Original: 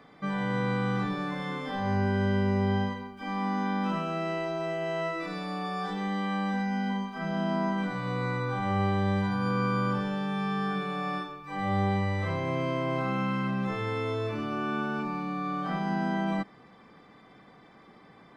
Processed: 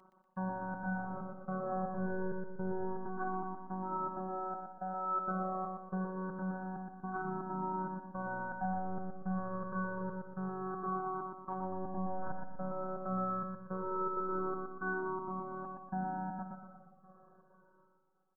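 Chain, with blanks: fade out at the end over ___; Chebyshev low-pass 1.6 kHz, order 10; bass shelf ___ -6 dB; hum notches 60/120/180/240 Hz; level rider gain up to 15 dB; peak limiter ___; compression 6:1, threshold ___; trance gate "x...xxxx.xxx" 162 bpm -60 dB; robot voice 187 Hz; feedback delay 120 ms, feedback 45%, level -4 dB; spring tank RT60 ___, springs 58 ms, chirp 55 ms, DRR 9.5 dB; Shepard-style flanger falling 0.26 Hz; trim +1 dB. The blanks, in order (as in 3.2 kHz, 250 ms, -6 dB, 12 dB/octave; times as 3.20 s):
6.03 s, 140 Hz, -14 dBFS, -28 dBFS, 3 s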